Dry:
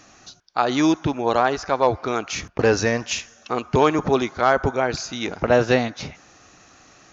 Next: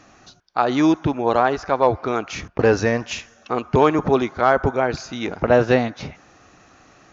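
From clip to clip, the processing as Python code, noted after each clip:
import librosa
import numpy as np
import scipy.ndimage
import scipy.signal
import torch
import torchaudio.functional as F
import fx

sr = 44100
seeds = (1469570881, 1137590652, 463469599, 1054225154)

y = fx.high_shelf(x, sr, hz=3700.0, db=-11.0)
y = y * librosa.db_to_amplitude(2.0)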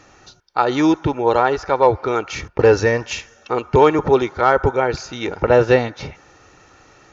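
y = x + 0.46 * np.pad(x, (int(2.2 * sr / 1000.0), 0))[:len(x)]
y = y * librosa.db_to_amplitude(1.5)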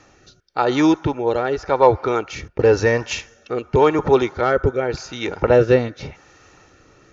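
y = fx.rotary(x, sr, hz=0.9)
y = y * librosa.db_to_amplitude(1.0)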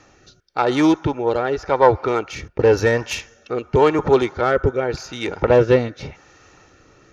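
y = fx.self_delay(x, sr, depth_ms=0.085)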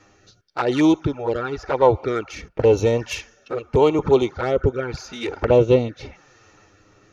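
y = fx.env_flanger(x, sr, rest_ms=10.5, full_db=-13.5)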